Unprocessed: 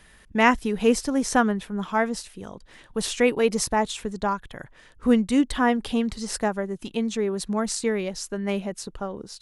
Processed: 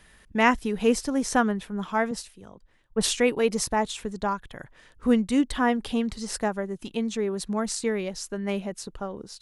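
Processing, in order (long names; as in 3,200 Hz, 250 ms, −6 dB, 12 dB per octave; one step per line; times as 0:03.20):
0:02.11–0:03.17: multiband upward and downward expander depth 100%
level −2 dB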